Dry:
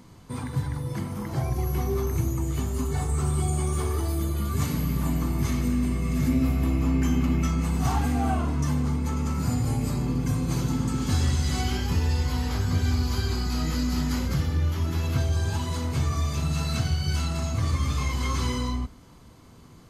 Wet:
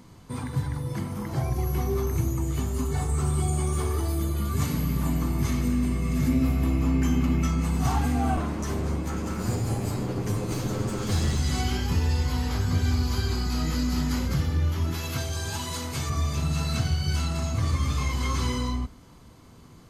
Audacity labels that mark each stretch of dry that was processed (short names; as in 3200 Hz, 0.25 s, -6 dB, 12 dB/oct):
8.360000	11.400000	minimum comb delay 9.7 ms
14.940000	16.100000	tilt +2 dB/oct